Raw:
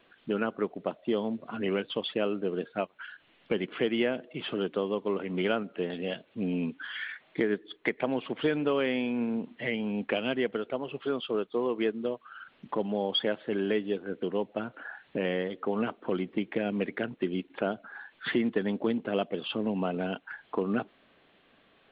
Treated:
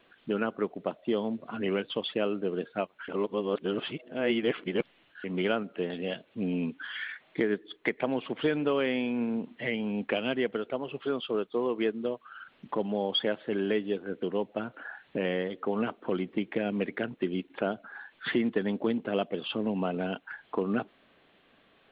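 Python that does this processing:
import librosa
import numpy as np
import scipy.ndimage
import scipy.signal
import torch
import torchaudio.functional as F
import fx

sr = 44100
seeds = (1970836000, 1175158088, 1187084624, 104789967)

y = fx.edit(x, sr, fx.reverse_span(start_s=3.08, length_s=2.16), tone=tone)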